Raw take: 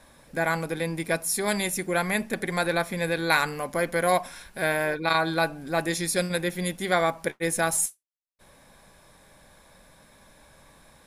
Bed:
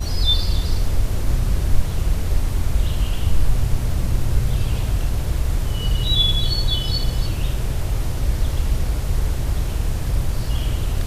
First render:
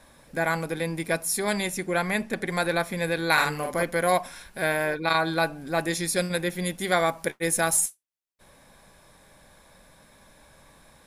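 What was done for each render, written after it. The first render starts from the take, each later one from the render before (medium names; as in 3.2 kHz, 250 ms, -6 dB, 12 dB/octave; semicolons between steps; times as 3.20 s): 1.44–2.49 s: treble shelf 11 kHz -10 dB; 3.33–3.83 s: doubling 46 ms -3 dB; 6.79–7.80 s: treble shelf 5.6 kHz +5 dB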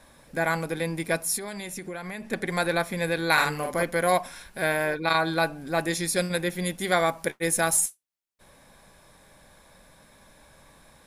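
1.37–2.32 s: compression 8:1, threshold -32 dBFS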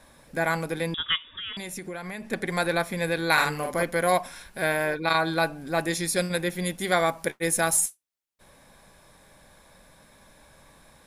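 0.94–1.57 s: frequency inversion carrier 3.6 kHz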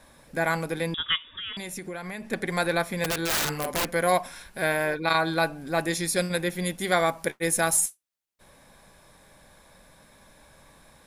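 3.04–3.86 s: integer overflow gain 20 dB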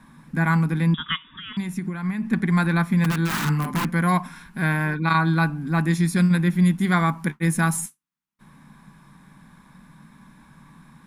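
FFT filter 110 Hz 0 dB, 150 Hz +15 dB, 230 Hz +13 dB, 570 Hz -13 dB, 1 kHz +6 dB, 4.6 kHz -6 dB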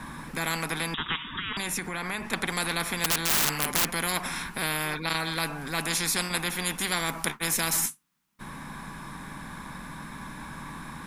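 spectrum-flattening compressor 4:1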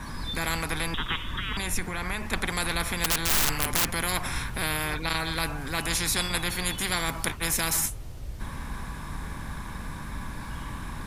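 add bed -17 dB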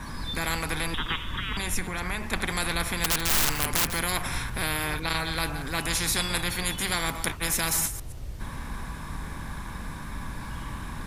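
chunks repeated in reverse 125 ms, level -13 dB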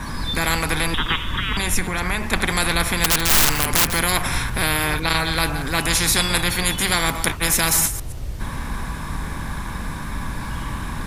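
trim +8 dB; peak limiter -2 dBFS, peak gain reduction 3 dB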